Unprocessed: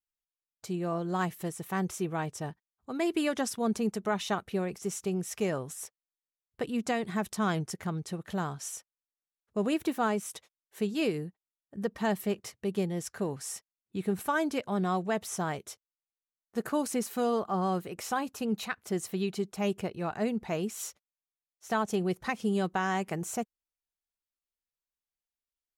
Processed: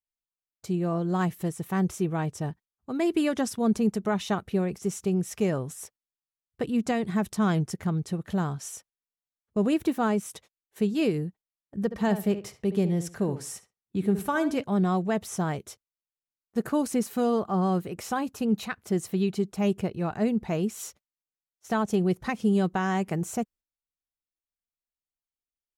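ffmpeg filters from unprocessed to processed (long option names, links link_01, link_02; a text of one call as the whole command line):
ffmpeg -i in.wav -filter_complex "[0:a]asplit=3[link_01][link_02][link_03];[link_01]afade=type=out:start_time=11.9:duration=0.02[link_04];[link_02]asplit=2[link_05][link_06];[link_06]adelay=70,lowpass=frequency=3000:poles=1,volume=-11dB,asplit=2[link_07][link_08];[link_08]adelay=70,lowpass=frequency=3000:poles=1,volume=0.23,asplit=2[link_09][link_10];[link_10]adelay=70,lowpass=frequency=3000:poles=1,volume=0.23[link_11];[link_05][link_07][link_09][link_11]amix=inputs=4:normalize=0,afade=type=in:start_time=11.9:duration=0.02,afade=type=out:start_time=14.62:duration=0.02[link_12];[link_03]afade=type=in:start_time=14.62:duration=0.02[link_13];[link_04][link_12][link_13]amix=inputs=3:normalize=0,agate=range=-9dB:threshold=-55dB:ratio=16:detection=peak,lowshelf=frequency=340:gain=9" out.wav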